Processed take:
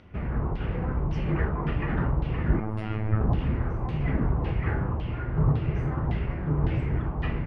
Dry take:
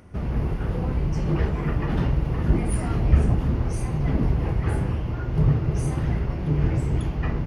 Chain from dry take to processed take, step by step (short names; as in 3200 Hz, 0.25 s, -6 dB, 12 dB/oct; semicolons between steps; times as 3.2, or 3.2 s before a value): LFO low-pass saw down 1.8 Hz 930–3600 Hz; 2.6–3.21 robotiser 108 Hz; gain -3.5 dB